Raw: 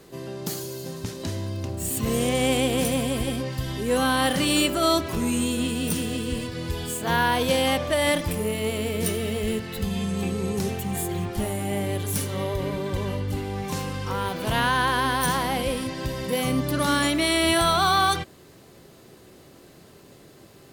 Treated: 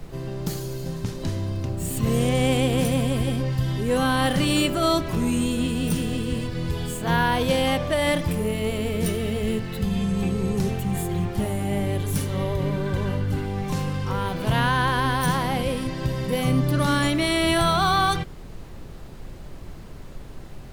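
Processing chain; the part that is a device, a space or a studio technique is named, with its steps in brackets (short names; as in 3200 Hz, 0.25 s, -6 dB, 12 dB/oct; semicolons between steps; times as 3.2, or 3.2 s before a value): car interior (bell 140 Hz +8.5 dB 0.75 oct; high shelf 4700 Hz -5 dB; brown noise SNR 13 dB); 12.75–13.46 bell 1500 Hz +8.5 dB 0.24 oct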